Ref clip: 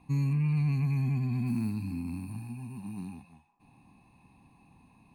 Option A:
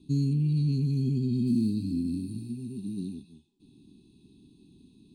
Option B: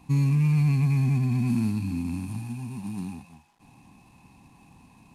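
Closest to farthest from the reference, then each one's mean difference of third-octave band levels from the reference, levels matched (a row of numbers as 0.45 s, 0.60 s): B, A; 1.5 dB, 6.0 dB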